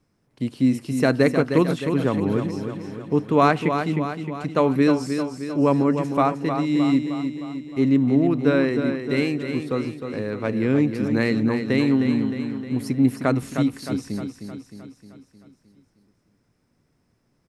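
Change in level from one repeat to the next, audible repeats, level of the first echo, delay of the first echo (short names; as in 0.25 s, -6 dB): -5.0 dB, 6, -7.5 dB, 0.309 s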